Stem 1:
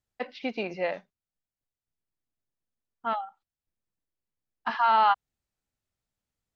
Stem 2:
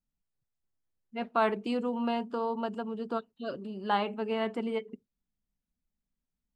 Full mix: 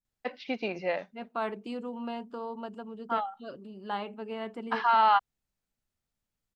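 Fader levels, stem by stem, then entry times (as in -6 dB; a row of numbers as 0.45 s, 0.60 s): -1.0 dB, -6.0 dB; 0.05 s, 0.00 s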